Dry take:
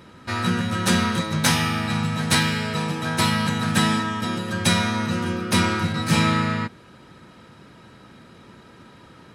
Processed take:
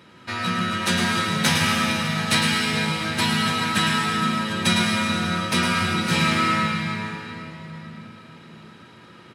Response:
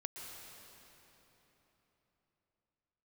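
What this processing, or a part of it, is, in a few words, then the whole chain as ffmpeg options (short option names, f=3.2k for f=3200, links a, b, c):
PA in a hall: -filter_complex "[0:a]highpass=100,equalizer=f=2.8k:t=o:w=1.6:g=5.5,aecho=1:1:107:0.447[a];[1:a]atrim=start_sample=2205[b];[a][b]afir=irnorm=-1:irlink=0"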